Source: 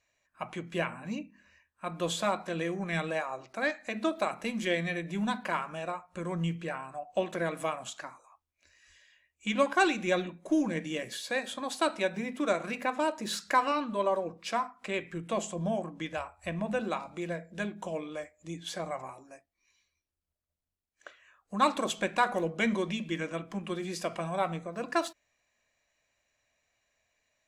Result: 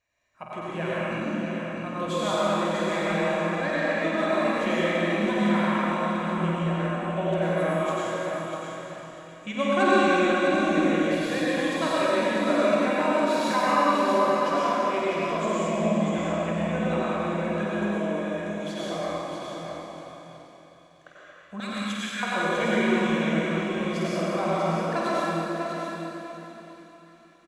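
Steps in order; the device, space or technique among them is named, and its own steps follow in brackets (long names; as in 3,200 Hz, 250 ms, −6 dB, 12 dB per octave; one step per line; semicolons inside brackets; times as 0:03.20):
0:21.60–0:22.23: Butterworth high-pass 1,400 Hz 72 dB per octave
swimming-pool hall (convolution reverb RT60 3.0 s, pre-delay 84 ms, DRR −7.5 dB; high-shelf EQ 4,300 Hz −7.5 dB)
double-tracking delay 49 ms −7 dB
echo with a time of its own for lows and highs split 1,200 Hz, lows 231 ms, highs 504 ms, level −14 dB
repeating echo 648 ms, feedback 17%, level −7 dB
level −2.5 dB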